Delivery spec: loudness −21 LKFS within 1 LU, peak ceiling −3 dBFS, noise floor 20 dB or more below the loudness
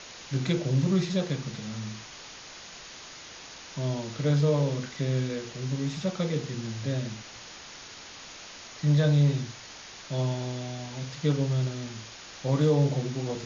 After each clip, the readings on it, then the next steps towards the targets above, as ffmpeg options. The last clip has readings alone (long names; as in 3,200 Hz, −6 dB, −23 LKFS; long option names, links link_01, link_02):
background noise floor −46 dBFS; target noise floor −49 dBFS; integrated loudness −28.5 LKFS; sample peak −13.5 dBFS; target loudness −21.0 LKFS
→ -af "afftdn=noise_reduction=6:noise_floor=-46"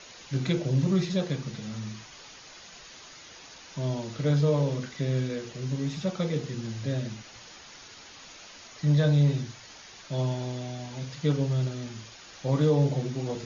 background noise floor −49 dBFS; integrated loudness −28.5 LKFS; sample peak −13.5 dBFS; target loudness −21.0 LKFS
→ -af "volume=7.5dB"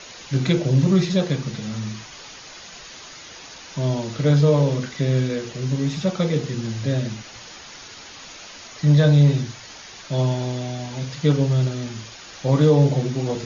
integrated loudness −21.0 LKFS; sample peak −6.0 dBFS; background noise floor −41 dBFS